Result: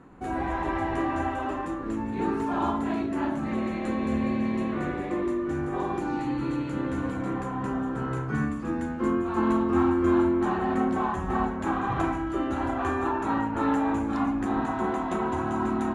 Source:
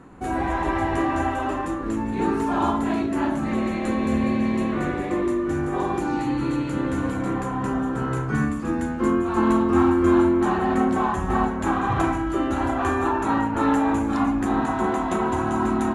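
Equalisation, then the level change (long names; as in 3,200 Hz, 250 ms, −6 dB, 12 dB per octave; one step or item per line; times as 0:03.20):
high-shelf EQ 6,900 Hz −9 dB
mains-hum notches 50/100 Hz
−4.5 dB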